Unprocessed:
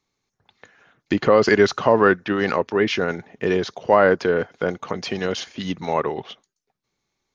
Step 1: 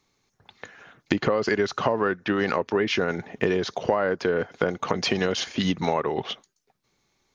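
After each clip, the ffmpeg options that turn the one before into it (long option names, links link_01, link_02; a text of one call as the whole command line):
ffmpeg -i in.wav -af "acompressor=threshold=-26dB:ratio=10,volume=6.5dB" out.wav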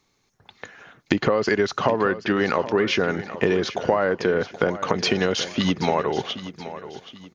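ffmpeg -i in.wav -af "aecho=1:1:777|1554|2331:0.211|0.0761|0.0274,volume=2.5dB" out.wav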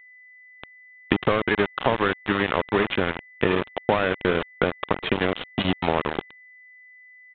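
ffmpeg -i in.wav -af "aeval=exprs='val(0)*gte(abs(val(0)),0.119)':channel_layout=same,aeval=exprs='val(0)+0.00447*sin(2*PI*2000*n/s)':channel_layout=same,aresample=8000,aresample=44100" out.wav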